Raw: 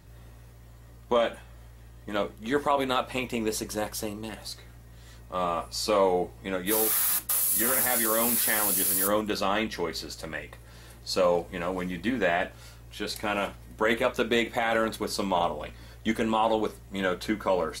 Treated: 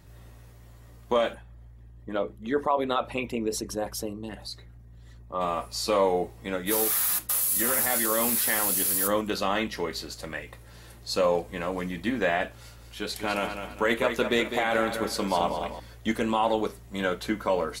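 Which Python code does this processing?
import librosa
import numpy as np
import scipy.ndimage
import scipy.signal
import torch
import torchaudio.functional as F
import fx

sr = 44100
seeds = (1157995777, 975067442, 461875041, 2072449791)

y = fx.envelope_sharpen(x, sr, power=1.5, at=(1.33, 5.4), fade=0.02)
y = fx.echo_feedback(y, sr, ms=203, feedback_pct=35, wet_db=-8.0, at=(12.57, 15.8))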